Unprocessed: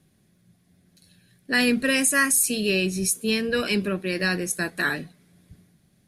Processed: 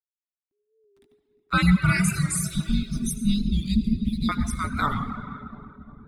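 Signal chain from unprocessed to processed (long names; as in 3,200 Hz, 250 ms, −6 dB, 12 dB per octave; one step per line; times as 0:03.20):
time-frequency cells dropped at random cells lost 29%
slack as between gear wheels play −44.5 dBFS
0:02.03–0:04.29: Chebyshev band-stop filter 620–3,900 Hz, order 3
feedback echo with a low-pass in the loop 349 ms, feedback 77%, low-pass 1,100 Hz, level −10.5 dB
comb and all-pass reverb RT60 2.1 s, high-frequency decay 0.8×, pre-delay 35 ms, DRR 2.5 dB
dynamic equaliser 230 Hz, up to +7 dB, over −38 dBFS, Q 0.76
reverb reduction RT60 0.8 s
bass and treble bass −3 dB, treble −6 dB
frequency shifter −420 Hz
wow of a warped record 45 rpm, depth 100 cents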